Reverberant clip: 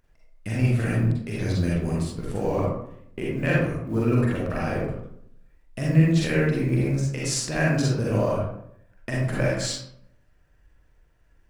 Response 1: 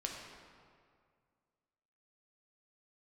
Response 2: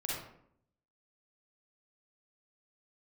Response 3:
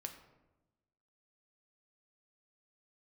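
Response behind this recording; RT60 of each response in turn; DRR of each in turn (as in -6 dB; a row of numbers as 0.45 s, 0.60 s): 2; 2.1 s, 0.70 s, 1.0 s; -0.5 dB, -5.0 dB, 4.5 dB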